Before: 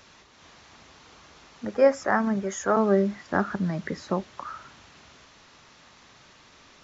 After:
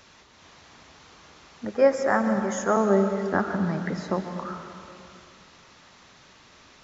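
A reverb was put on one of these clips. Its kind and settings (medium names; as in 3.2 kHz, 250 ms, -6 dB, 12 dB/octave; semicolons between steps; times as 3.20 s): plate-style reverb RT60 2.6 s, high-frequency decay 0.6×, pre-delay 105 ms, DRR 7 dB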